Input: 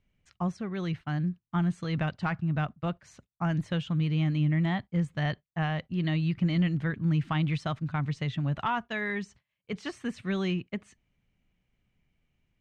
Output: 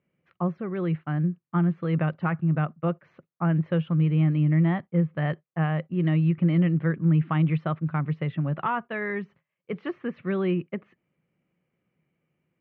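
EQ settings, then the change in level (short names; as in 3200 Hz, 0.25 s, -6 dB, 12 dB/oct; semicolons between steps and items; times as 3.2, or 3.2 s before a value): speaker cabinet 160–2600 Hz, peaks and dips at 160 Hz +9 dB, 350 Hz +8 dB, 520 Hz +9 dB, 1200 Hz +5 dB; 0.0 dB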